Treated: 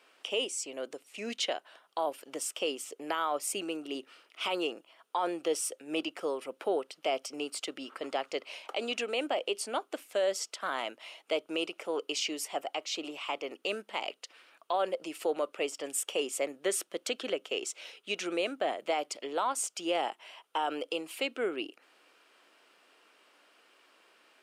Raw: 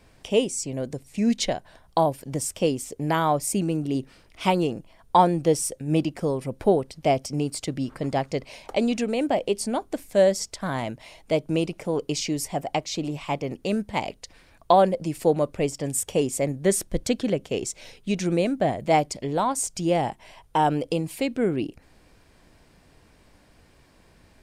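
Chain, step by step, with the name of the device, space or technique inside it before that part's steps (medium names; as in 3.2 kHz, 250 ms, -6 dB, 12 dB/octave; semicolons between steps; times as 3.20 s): laptop speaker (high-pass 340 Hz 24 dB/octave; peaking EQ 1.3 kHz +10.5 dB 0.4 oct; peaking EQ 2.9 kHz +10.5 dB 0.58 oct; peak limiter -14 dBFS, peak gain reduction 12 dB); trim -6.5 dB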